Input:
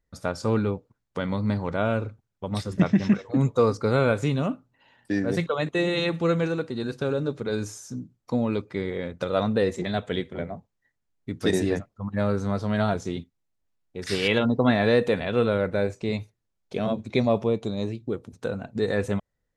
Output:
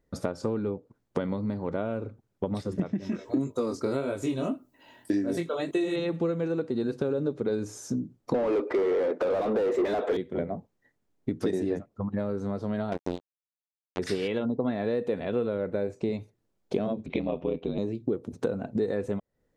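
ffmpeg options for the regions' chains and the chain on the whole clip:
-filter_complex "[0:a]asettb=1/sr,asplit=3[s0][s1][s2];[s0]atrim=end=3.004[s3];[s1]atrim=start=3:end=5.96,asetpts=PTS-STARTPTS,afade=t=in:d=0.004:c=qsin,afade=t=out:st=2.956:d=0.004:c=qsin,aemphasis=mode=production:type=75fm,aecho=1:1:3.1:0.42,atrim=end_sample=130536,flanger=delay=20:depth=4.4:speed=1.8[s4];[s2]atrim=start=5.956[s5];[s3][s4]acrossfade=d=0.004:c1=hsin:c2=qsin[s6];[s6][s5]acrossfade=d=0.004:c1=qsin:c2=hsin,asettb=1/sr,asplit=3[s7][s8][s9];[s7]atrim=end=8.344[s10];[s8]atrim=start=8.34:end=10.17,asetpts=PTS-STARTPTS,afade=t=in:d=0.004:c=qsin,afade=t=out:st=1.826:d=0.004:c=qsin,highpass=f=310:w=0.5412,highpass=f=310:w=1.3066,highshelf=f=4200:g=-6.5,asplit=2[s11][s12];[s12]highpass=f=720:p=1,volume=56.2,asoftclip=type=tanh:threshold=0.266[s13];[s11][s13]amix=inputs=2:normalize=0,lowpass=f=1200:p=1,volume=0.501[s14];[s9]atrim=start=10.166[s15];[s10][s14]acrossfade=d=0.004:c1=hsin:c2=qsin[s16];[s16][s15]acrossfade=d=0.004:c1=qsin:c2=hsin,asettb=1/sr,asplit=3[s17][s18][s19];[s17]atrim=end=12.924[s20];[s18]atrim=start=12.92:end=13.99,asetpts=PTS-STARTPTS,afade=t=in:d=0.004:c=qsin,afade=t=out:st=1.066:d=0.004:c=qsin,bandreject=f=50:t=h:w=6,bandreject=f=100:t=h:w=6,bandreject=f=150:t=h:w=6,bandreject=f=200:t=h:w=6,bandreject=f=250:t=h:w=6,acontrast=81,acrusher=bits=2:mix=0:aa=0.5[s21];[s19]atrim=start=13.986[s22];[s20][s21]acrossfade=d=0.004:c1=hsin:c2=qsin[s23];[s23][s22]acrossfade=d=0.004:c1=qsin:c2=hsin,asettb=1/sr,asplit=3[s24][s25][s26];[s24]atrim=end=17.064[s27];[s25]atrim=start=17.06:end=17.78,asetpts=PTS-STARTPTS,afade=t=in:d=0.004:c=qsin,afade=t=out:st=0.716:d=0.004:c=qsin,lowpass=f=2900:t=q:w=4.6,aeval=exprs='val(0)*sin(2*PI*43*n/s)':c=same[s28];[s26]atrim=start=17.776[s29];[s27][s28]acrossfade=d=0.004:c1=hsin:c2=qsin[s30];[s30][s29]acrossfade=d=0.004:c1=qsin:c2=hsin,acompressor=threshold=0.0158:ratio=10,equalizer=f=350:w=0.5:g=11.5,volume=1.19"

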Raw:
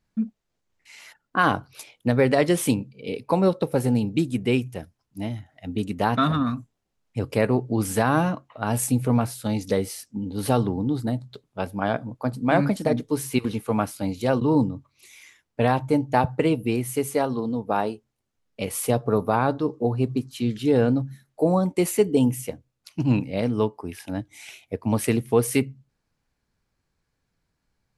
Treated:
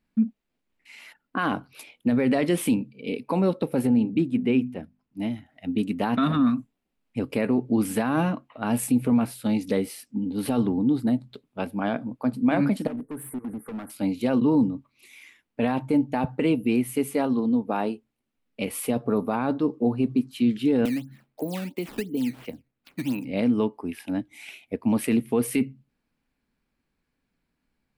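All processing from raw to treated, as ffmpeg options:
-filter_complex "[0:a]asettb=1/sr,asplit=3[s0][s1][s2];[s0]atrim=end=3.874[s3];[s1]atrim=start=3.87:end=5.2,asetpts=PTS-STARTPTS,afade=t=in:d=0.004:c=qsin,afade=t=out:st=1.326:d=0.004:c=qsin,lowpass=f=2000:p=1,bandreject=f=50:t=h:w=6,bandreject=f=100:t=h:w=6,bandreject=f=150:t=h:w=6,bandreject=f=200:t=h:w=6,bandreject=f=250:t=h:w=6[s4];[s2]atrim=start=5.196[s5];[s3][s4]acrossfade=d=0.004:c1=hsin:c2=qsin[s6];[s6][s5]acrossfade=d=0.004:c1=qsin:c2=hsin,asettb=1/sr,asplit=3[s7][s8][s9];[s7]atrim=end=12.874[s10];[s8]atrim=start=12.87:end=13.9,asetpts=PTS-STARTPTS,afade=t=in:d=0.004:c=qsin,afade=t=out:st=1.026:d=0.004:c=qsin,asuperstop=centerf=4000:order=12:qfactor=0.62,acompressor=threshold=0.0316:ratio=3:attack=3.2:release=140:knee=1:detection=peak,volume=39.8,asoftclip=hard,volume=0.0251[s11];[s9]atrim=start=13.896[s12];[s10][s11]acrossfade=d=0.004:c1=hsin:c2=qsin[s13];[s13][s12]acrossfade=d=0.004:c1=qsin:c2=hsin,asettb=1/sr,asplit=3[s14][s15][s16];[s14]atrim=end=20.854[s17];[s15]atrim=start=20.85:end=23.25,asetpts=PTS-STARTPTS,afade=t=in:d=0.004:c=qsin,afade=t=out:st=2.396:d=0.004:c=qsin,lowpass=6200,acrusher=samples=12:mix=1:aa=0.000001:lfo=1:lforange=19.2:lforate=2.9,acrossover=split=280|3500[s18][s19][s20];[s18]acompressor=threshold=0.02:ratio=4[s21];[s19]acompressor=threshold=0.02:ratio=4[s22];[s20]acompressor=threshold=0.0126:ratio=4[s23];[s21][s22][s23]amix=inputs=3:normalize=0[s24];[s16]atrim=start=23.246[s25];[s17][s24]acrossfade=d=0.004:c1=hsin:c2=qsin[s26];[s26][s25]acrossfade=d=0.004:c1=qsin:c2=hsin,equalizer=f=100:t=o:w=0.67:g=-8,equalizer=f=250:t=o:w=0.67:g=9,equalizer=f=2500:t=o:w=0.67:g=5,equalizer=f=6300:t=o:w=0.67:g=-7,alimiter=limit=0.282:level=0:latency=1:release=16,volume=0.75"

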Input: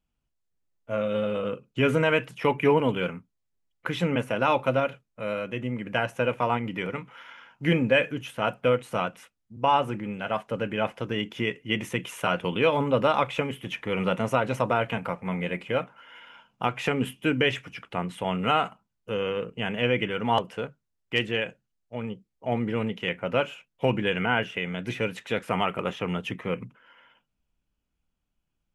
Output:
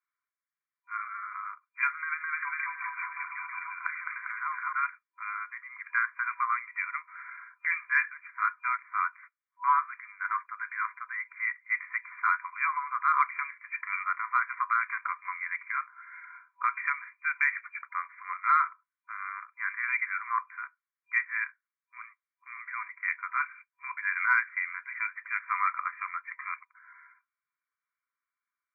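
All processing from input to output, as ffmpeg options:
-filter_complex "[0:a]asettb=1/sr,asplit=3[s0][s1][s2];[s0]atrim=end=1.914[s3];[s1]atrim=start=1.91:end=4.73,asetpts=PTS-STARTPTS,afade=t=in:d=0.004:c=qsin,afade=t=out:st=2.816:d=0.004:c=qsin,aecho=1:1:210|399|569.1|722.2|860|984:0.794|0.631|0.501|0.398|0.316|0.251,atrim=end_sample=124362,acompressor=threshold=0.0562:ratio=10:attack=3.2:release=140:knee=1:detection=peak[s4];[s2]atrim=start=4.726[s5];[s3][s4]acrossfade=d=0.004:c1=hsin:c2=qsin[s6];[s6][s5]acrossfade=d=0.004:c1=qsin:c2=hsin,afftfilt=real='re*between(b*sr/4096,990,2400)':imag='im*between(b*sr/4096,990,2400)':win_size=4096:overlap=0.75,acontrast=44,volume=0.794"

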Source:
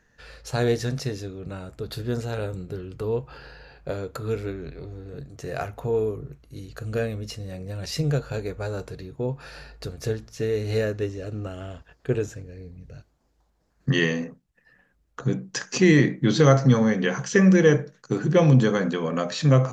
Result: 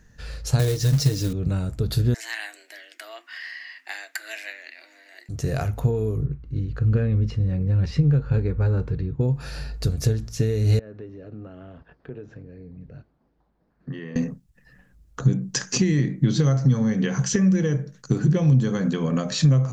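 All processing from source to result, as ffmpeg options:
-filter_complex "[0:a]asettb=1/sr,asplit=3[s0][s1][s2];[s0]atrim=end=0.594[s3];[s1]atrim=start=0.59:end=1.33,asetpts=PTS-STARTPTS,afade=t=in:d=0.004:c=qsin,afade=t=out:st=0.736:d=0.004:c=qsin,equalizer=f=4600:t=o:w=1.2:g=5,aecho=1:1:6.5:0.89,atrim=end_sample=32634,acrusher=bits=3:mode=log:mix=0:aa=0.000001[s4];[s2]atrim=start=1.326[s5];[s3][s4]acrossfade=d=0.004:c1=hsin:c2=qsin[s6];[s6][s5]acrossfade=d=0.004:c1=qsin:c2=hsin,asettb=1/sr,asplit=3[s7][s8][s9];[s7]atrim=end=2.144[s10];[s8]atrim=start=2.14:end=5.29,asetpts=PTS-STARTPTS,afade=t=in:d=0.004:c=qsin,afade=t=out:st=3.146:d=0.004:c=qsin,afreqshift=210,highpass=f=2000:t=q:w=4.7[s11];[s9]atrim=start=5.286[s12];[s10][s11]acrossfade=d=0.004:c1=hsin:c2=qsin[s13];[s13][s12]acrossfade=d=0.004:c1=qsin:c2=hsin,asettb=1/sr,asplit=3[s14][s15][s16];[s14]atrim=end=6.264[s17];[s15]atrim=start=6.26:end=9.21,asetpts=PTS-STARTPTS,afade=t=in:d=0.004:c=qsin,afade=t=out:st=2.946:d=0.004:c=qsin,lowpass=2100,equalizer=f=650:w=6.2:g=-11.5[s18];[s16]atrim=start=9.206[s19];[s17][s18]acrossfade=d=0.004:c1=hsin:c2=qsin[s20];[s20][s19]acrossfade=d=0.004:c1=qsin:c2=hsin,asettb=1/sr,asplit=3[s21][s22][s23];[s21]atrim=end=10.794[s24];[s22]atrim=start=10.79:end=14.16,asetpts=PTS-STARTPTS,afade=t=in:d=0.004:c=qsin,afade=t=out:st=3.366:d=0.004:c=qsin,lowpass=f=4400:w=0.5412,lowpass=f=4400:w=1.3066,acrossover=split=180 2100:gain=0.126 1 0.224[s25][s26][s27];[s25][s26][s27]amix=inputs=3:normalize=0,acompressor=threshold=0.00447:ratio=2.5:attack=3.2:release=140:knee=1:detection=peak[s28];[s23]atrim=start=14.156[s29];[s24][s28]acrossfade=d=0.004:c1=hsin:c2=qsin[s30];[s30][s29]acrossfade=d=0.004:c1=qsin:c2=hsin,acompressor=threshold=0.0447:ratio=6,bass=f=250:g=13,treble=f=4000:g=7,volume=1.19"

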